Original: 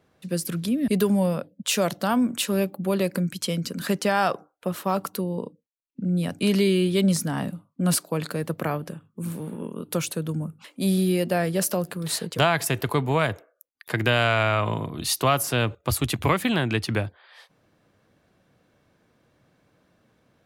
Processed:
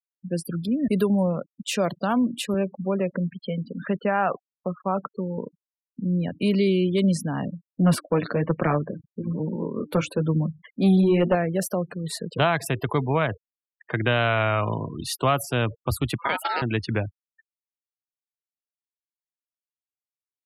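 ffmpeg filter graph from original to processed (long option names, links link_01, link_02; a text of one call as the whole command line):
ffmpeg -i in.wav -filter_complex "[0:a]asettb=1/sr,asplit=3[link_01][link_02][link_03];[link_01]atrim=end=2.544[link_04];[link_02]atrim=start=2.54:end=5.38,asetpts=PTS-STARTPTS,afade=type=in:duration=0.004:curve=qsin,afade=type=out:start_time=2.836:duration=0.004:curve=qsin,highpass=130,lowpass=2600,bandreject=frequency=330:width=5.9[link_05];[link_03]atrim=start=5.376[link_06];[link_04][link_05]acrossfade=duration=0.004:curve1=hsin:curve2=qsin[link_07];[link_07][link_06]acrossfade=duration=0.004:curve1=qsin:curve2=hsin,asettb=1/sr,asplit=3[link_08][link_09][link_10];[link_08]atrim=end=7.704[link_11];[link_09]atrim=start=7.7:end=11.35,asetpts=PTS-STARTPTS,afade=type=in:duration=0.004:curve=qsin,afade=type=out:start_time=3.646:duration=0.004:curve=qsin,bass=frequency=250:gain=-2,treble=frequency=4000:gain=-9,flanger=delay=5.5:depth=4.8:regen=-32:speed=1.1:shape=sinusoidal,aeval=exprs='0.237*sin(PI/2*2*val(0)/0.237)':channel_layout=same[link_12];[link_10]atrim=start=11.346[link_13];[link_11][link_12]acrossfade=duration=0.004:curve1=hsin:curve2=qsin[link_14];[link_14][link_13]acrossfade=duration=0.004:curve1=qsin:curve2=hsin,asettb=1/sr,asplit=3[link_15][link_16][link_17];[link_15]atrim=end=16.184[link_18];[link_16]atrim=start=16.18:end=16.62,asetpts=PTS-STARTPTS,afade=type=in:duration=0.004:curve=qsin,afade=type=out:start_time=0.436:duration=0.004:curve=qsin,highshelf=frequency=5400:gain=9.5,aeval=exprs='val(0)*sin(2*PI*1100*n/s)':channel_layout=same,highpass=240[link_19];[link_17]atrim=start=16.616[link_20];[link_18][link_19]acrossfade=duration=0.004:curve1=hsin:curve2=qsin[link_21];[link_21][link_20]acrossfade=duration=0.004:curve1=qsin:curve2=hsin,afftfilt=real='re*gte(hypot(re,im),0.0282)':imag='im*gte(hypot(re,im),0.0282)':win_size=1024:overlap=0.75,highshelf=frequency=3400:gain=-7" out.wav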